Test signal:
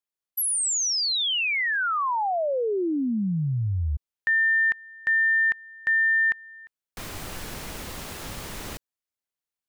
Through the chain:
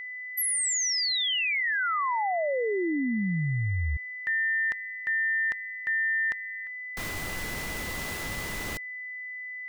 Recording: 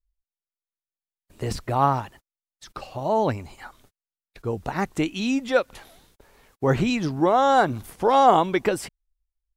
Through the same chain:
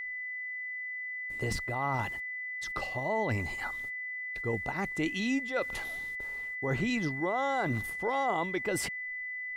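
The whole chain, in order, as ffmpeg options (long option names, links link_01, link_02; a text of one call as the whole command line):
ffmpeg -i in.wav -af "areverse,acompressor=threshold=-28dB:ratio=6:attack=0.49:release=568:knee=6:detection=peak,areverse,aeval=exprs='val(0)+0.0126*sin(2*PI*2000*n/s)':channel_layout=same,volume=2.5dB" out.wav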